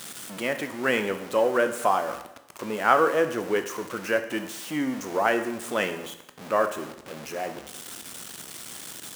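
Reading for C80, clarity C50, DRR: 13.0 dB, 11.0 dB, 8.0 dB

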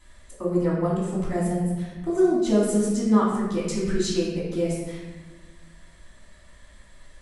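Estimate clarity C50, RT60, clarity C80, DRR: 0.0 dB, 1.3 s, 3.0 dB, −7.5 dB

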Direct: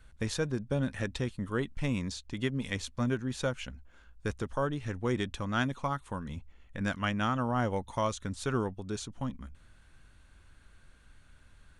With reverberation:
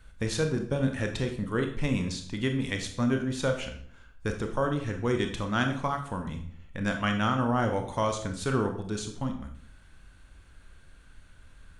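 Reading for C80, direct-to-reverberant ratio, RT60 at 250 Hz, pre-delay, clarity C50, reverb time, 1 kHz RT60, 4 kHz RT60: 11.5 dB, 4.5 dB, 0.75 s, 25 ms, 8.5 dB, 0.60 s, 0.55 s, 0.45 s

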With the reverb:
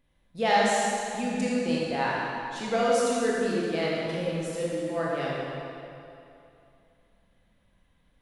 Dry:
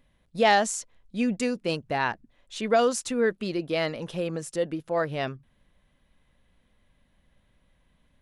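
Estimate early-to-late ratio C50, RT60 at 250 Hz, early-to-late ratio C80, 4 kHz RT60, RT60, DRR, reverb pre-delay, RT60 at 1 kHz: −3.5 dB, 2.6 s, −1.5 dB, 2.1 s, 2.7 s, −6.0 dB, 20 ms, 2.7 s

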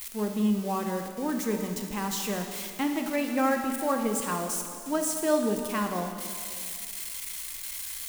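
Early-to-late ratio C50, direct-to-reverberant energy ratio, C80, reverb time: 5.0 dB, 3.5 dB, 6.5 dB, 2.2 s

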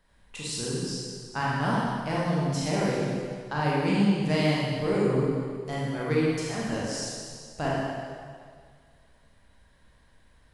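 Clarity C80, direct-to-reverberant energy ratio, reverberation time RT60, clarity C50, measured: −0.5 dB, −6.5 dB, 1.9 s, −3.0 dB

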